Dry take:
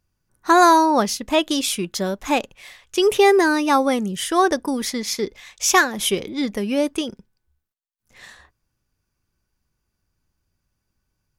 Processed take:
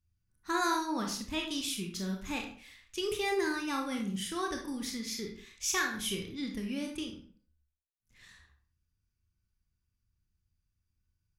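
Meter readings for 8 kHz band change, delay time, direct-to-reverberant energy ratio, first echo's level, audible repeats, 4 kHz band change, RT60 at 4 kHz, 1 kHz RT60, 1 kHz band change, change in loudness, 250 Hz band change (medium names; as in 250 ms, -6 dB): -12.5 dB, no echo, 1.5 dB, no echo, no echo, -11.5 dB, 0.35 s, 0.50 s, -18.5 dB, -15.0 dB, -13.5 dB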